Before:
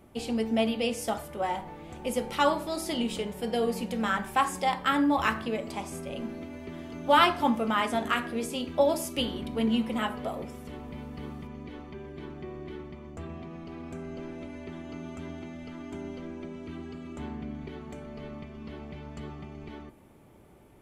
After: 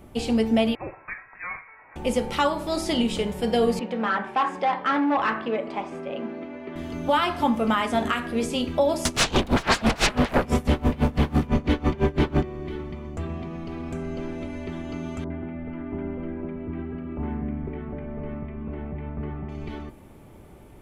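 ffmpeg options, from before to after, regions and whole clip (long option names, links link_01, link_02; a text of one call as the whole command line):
ffmpeg -i in.wav -filter_complex "[0:a]asettb=1/sr,asplit=3[link_01][link_02][link_03];[link_01]atrim=end=0.754[link_04];[link_02]atrim=start=0.75:end=1.96,asetpts=PTS-STARTPTS,afade=type=in:duration=0.004:curve=qsin,afade=type=out:start_time=1.206:duration=0.004:curve=qsin,highpass=frequency=1200:width=0.5412,highpass=frequency=1200:width=1.3066,lowpass=frequency=2600:width_type=q:width=0.5098,lowpass=frequency=2600:width_type=q:width=0.6013,lowpass=frequency=2600:width_type=q:width=0.9,lowpass=frequency=2600:width_type=q:width=2.563,afreqshift=-3100[link_05];[link_03]atrim=start=1.956[link_06];[link_04][link_05]acrossfade=duration=0.004:curve1=hsin:curve2=qsin[link_07];[link_07][link_06]acrossfade=duration=0.004:curve1=qsin:curve2=hsin,asettb=1/sr,asplit=3[link_08][link_09][link_10];[link_08]atrim=end=3.794[link_11];[link_09]atrim=start=3.79:end=6.76,asetpts=PTS-STARTPTS,afade=type=in:duration=0.004:curve=qsin,afade=type=out:start_time=2.966:duration=0.004:curve=qsin,volume=24.5dB,asoftclip=hard,volume=-24.5dB,highpass=280,lowpass=2400[link_12];[link_10]atrim=start=6.756[link_13];[link_11][link_12]acrossfade=duration=0.004:curve1=hsin:curve2=qsin[link_14];[link_14][link_13]acrossfade=duration=0.004:curve1=qsin:curve2=hsin,asettb=1/sr,asplit=3[link_15][link_16][link_17];[link_15]atrim=end=9.054[link_18];[link_16]atrim=start=9.05:end=12.43,asetpts=PTS-STARTPTS,afade=type=in:duration=0.004:curve=qsin,afade=type=out:start_time=3.376:duration=0.004:curve=qsin,aeval=exprs='0.168*sin(PI/2*10*val(0)/0.168)':channel_layout=same,aeval=exprs='val(0)*pow(10,-25*(0.5-0.5*cos(2*PI*6*n/s))/20)':channel_layout=same[link_19];[link_17]atrim=start=12.426[link_20];[link_18][link_19]acrossfade=duration=0.004:curve1=hsin:curve2=qsin[link_21];[link_21][link_20]acrossfade=duration=0.004:curve1=qsin:curve2=hsin,asettb=1/sr,asplit=3[link_22][link_23][link_24];[link_22]atrim=end=15.244[link_25];[link_23]atrim=start=15.24:end=19.49,asetpts=PTS-STARTPTS,afade=type=in:duration=0.004:curve=qsin,afade=type=out:start_time=4.246:duration=0.004:curve=qsin,lowpass=frequency=2100:width=0.5412,lowpass=frequency=2100:width=1.3066,acrossover=split=1200[link_26][link_27];[link_27]adelay=60[link_28];[link_26][link_28]amix=inputs=2:normalize=0,atrim=end_sample=187425[link_29];[link_24]atrim=start=19.486[link_30];[link_25][link_29]acrossfade=duration=0.004:curve1=hsin:curve2=qsin[link_31];[link_31][link_30]acrossfade=duration=0.004:curve1=qsin:curve2=hsin,lowshelf=frequency=73:gain=9,alimiter=limit=-18.5dB:level=0:latency=1:release=285,acrossover=split=8800[link_32][link_33];[link_33]acompressor=threshold=-59dB:ratio=4:attack=1:release=60[link_34];[link_32][link_34]amix=inputs=2:normalize=0,volume=6.5dB" out.wav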